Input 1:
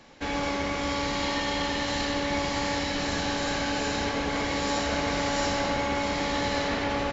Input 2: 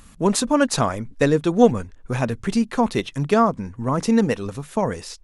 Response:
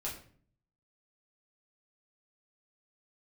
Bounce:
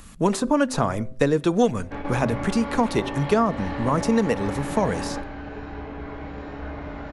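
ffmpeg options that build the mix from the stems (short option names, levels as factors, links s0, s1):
-filter_complex "[0:a]lowpass=1500,adelay=1700,volume=0.75,asplit=2[s0][s1];[s1]volume=0.596[s2];[1:a]volume=1.33,asplit=3[s3][s4][s5];[s4]volume=0.0841[s6];[s5]apad=whole_len=389037[s7];[s0][s7]sidechaingate=range=0.0224:threshold=0.0112:ratio=16:detection=peak[s8];[2:a]atrim=start_sample=2205[s9];[s2][s6]amix=inputs=2:normalize=0[s10];[s10][s9]afir=irnorm=-1:irlink=0[s11];[s8][s3][s11]amix=inputs=3:normalize=0,bandreject=f=129.1:t=h:w=4,bandreject=f=258.2:t=h:w=4,bandreject=f=387.3:t=h:w=4,bandreject=f=516.4:t=h:w=4,bandreject=f=645.5:t=h:w=4,acrossover=split=390|1500[s12][s13][s14];[s12]acompressor=threshold=0.0794:ratio=4[s15];[s13]acompressor=threshold=0.0891:ratio=4[s16];[s14]acompressor=threshold=0.0224:ratio=4[s17];[s15][s16][s17]amix=inputs=3:normalize=0"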